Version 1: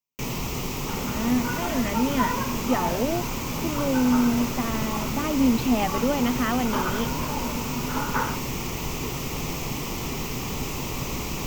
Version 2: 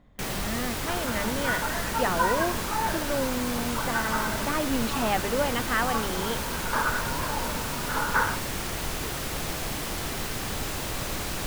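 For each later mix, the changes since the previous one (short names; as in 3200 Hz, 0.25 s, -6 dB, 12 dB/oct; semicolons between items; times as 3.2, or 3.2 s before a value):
speech: entry -0.70 s; first sound: remove ripple EQ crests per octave 0.76, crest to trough 7 dB; master: add thirty-one-band EQ 125 Hz -8 dB, 250 Hz -12 dB, 1600 Hz +9 dB, 10000 Hz +9 dB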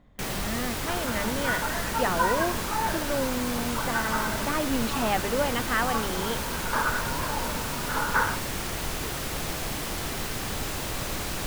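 none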